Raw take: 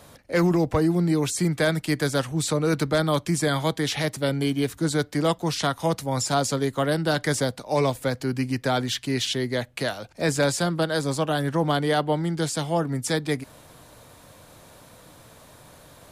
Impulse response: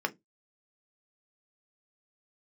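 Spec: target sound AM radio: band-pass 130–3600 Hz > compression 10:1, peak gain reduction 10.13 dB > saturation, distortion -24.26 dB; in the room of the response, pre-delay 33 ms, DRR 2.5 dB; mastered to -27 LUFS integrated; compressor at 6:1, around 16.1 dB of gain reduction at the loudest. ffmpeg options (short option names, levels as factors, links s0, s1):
-filter_complex "[0:a]acompressor=threshold=0.0158:ratio=6,asplit=2[s0][s1];[1:a]atrim=start_sample=2205,adelay=33[s2];[s1][s2]afir=irnorm=-1:irlink=0,volume=0.335[s3];[s0][s3]amix=inputs=2:normalize=0,highpass=130,lowpass=3600,acompressor=threshold=0.01:ratio=10,asoftclip=threshold=0.0224,volume=8.91"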